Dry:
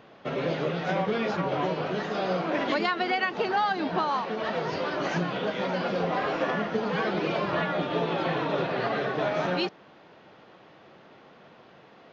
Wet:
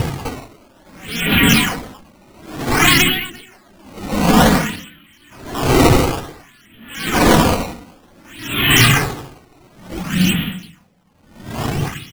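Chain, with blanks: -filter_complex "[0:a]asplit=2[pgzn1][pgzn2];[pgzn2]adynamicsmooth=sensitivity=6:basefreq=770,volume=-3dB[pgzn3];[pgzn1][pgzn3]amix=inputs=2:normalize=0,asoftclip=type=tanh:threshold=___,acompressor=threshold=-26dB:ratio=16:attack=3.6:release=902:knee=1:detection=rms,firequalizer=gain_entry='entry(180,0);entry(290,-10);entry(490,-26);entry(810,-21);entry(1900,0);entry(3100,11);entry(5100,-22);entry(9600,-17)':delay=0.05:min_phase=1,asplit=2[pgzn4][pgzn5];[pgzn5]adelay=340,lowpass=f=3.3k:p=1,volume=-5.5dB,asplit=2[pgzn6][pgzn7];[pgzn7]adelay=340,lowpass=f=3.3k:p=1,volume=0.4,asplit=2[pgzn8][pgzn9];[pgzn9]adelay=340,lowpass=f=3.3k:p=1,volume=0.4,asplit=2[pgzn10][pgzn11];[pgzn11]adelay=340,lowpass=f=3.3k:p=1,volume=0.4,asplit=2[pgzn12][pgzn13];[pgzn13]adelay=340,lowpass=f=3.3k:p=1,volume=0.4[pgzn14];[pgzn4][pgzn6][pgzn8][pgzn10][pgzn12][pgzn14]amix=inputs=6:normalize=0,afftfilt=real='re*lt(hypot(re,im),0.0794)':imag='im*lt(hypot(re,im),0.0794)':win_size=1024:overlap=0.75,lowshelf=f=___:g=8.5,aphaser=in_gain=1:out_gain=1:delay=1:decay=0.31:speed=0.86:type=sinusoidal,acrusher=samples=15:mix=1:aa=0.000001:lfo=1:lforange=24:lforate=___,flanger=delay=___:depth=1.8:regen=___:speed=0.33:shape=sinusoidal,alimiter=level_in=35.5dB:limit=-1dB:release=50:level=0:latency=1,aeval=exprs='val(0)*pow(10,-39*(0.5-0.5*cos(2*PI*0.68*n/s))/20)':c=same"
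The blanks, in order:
-11.5dB, 140, 0.55, 2.4, -31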